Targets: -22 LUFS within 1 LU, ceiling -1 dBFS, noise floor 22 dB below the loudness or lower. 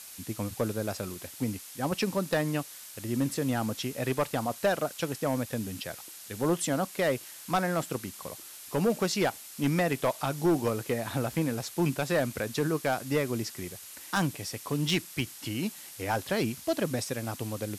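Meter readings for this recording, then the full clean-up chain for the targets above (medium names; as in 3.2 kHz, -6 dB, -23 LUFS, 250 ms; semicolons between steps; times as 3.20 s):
clipped samples 0.8%; clipping level -19.5 dBFS; noise floor -46 dBFS; noise floor target -53 dBFS; loudness -31.0 LUFS; peak level -19.5 dBFS; loudness target -22.0 LUFS
-> clip repair -19.5 dBFS; noise print and reduce 7 dB; trim +9 dB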